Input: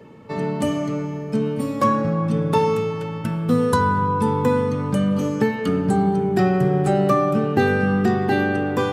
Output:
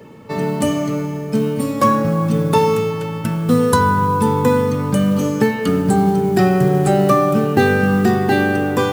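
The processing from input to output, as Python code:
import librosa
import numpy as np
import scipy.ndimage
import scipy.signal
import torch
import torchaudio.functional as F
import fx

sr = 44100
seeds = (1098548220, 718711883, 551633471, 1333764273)

y = fx.high_shelf(x, sr, hz=6000.0, db=7.5)
y = fx.mod_noise(y, sr, seeds[0], snr_db=29)
y = y * librosa.db_to_amplitude(4.0)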